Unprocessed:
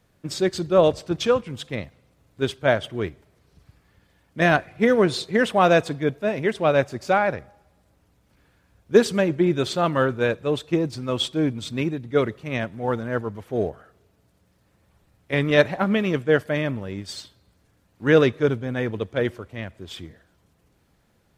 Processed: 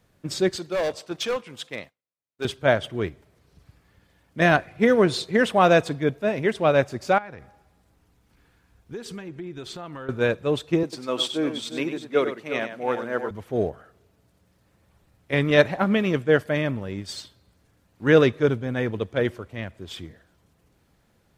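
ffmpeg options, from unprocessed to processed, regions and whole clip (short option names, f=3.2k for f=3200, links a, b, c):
-filter_complex "[0:a]asettb=1/sr,asplit=3[a][b][c];[a]atrim=end=0.564[d];[b]atrim=start=0.56:end=2.45,asetpts=PTS-STARTPTS,afade=t=in:d=0.004:c=qsin,afade=t=out:st=1.886:d=0.004:c=qsin,highpass=f=630:p=1,agate=range=-33dB:threshold=-48dB:ratio=3:release=100:detection=peak,volume=21.5dB,asoftclip=hard,volume=-21.5dB[e];[c]atrim=start=2.446[f];[d][e]acrossfade=d=0.004:c1=hsin:c2=qsin[g];[g][f]acrossfade=d=0.004:c1=qsin:c2=hsin,asettb=1/sr,asplit=3[h][i][j];[h]atrim=end=7.184[k];[i]atrim=start=7.18:end=10.09,asetpts=PTS-STARTPTS,afade=t=in:d=0.004:c=qsin,afade=t=out:st=2.906:d=0.004:c=qsin,asubboost=boost=3.5:cutoff=56,acompressor=threshold=-34dB:ratio=5:attack=3.2:release=140:knee=1:detection=peak,bandreject=f=580:w=5.8[l];[j]atrim=start=10.086[m];[k][l]acrossfade=d=0.004:c1=hsin:c2=qsin[n];[n][m]acrossfade=d=0.004:c1=qsin:c2=hsin,asettb=1/sr,asplit=3[o][p][q];[o]atrim=end=10.834[r];[p]atrim=start=10.83:end=13.31,asetpts=PTS-STARTPTS,afade=t=in:d=0.004:c=qsin,afade=t=out:st=2.476:d=0.004:c=qsin,highpass=310,aecho=1:1:97|354:0.335|0.282,atrim=end_sample=109368[s];[q]atrim=start=13.306[t];[r][s]acrossfade=d=0.004:c1=hsin:c2=qsin[u];[u][t]acrossfade=d=0.004:c1=qsin:c2=hsin"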